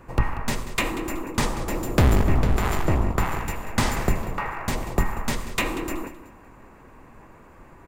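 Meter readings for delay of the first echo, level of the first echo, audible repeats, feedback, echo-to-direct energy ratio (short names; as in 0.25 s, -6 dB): 0.188 s, -14.5 dB, 2, 30%, -14.0 dB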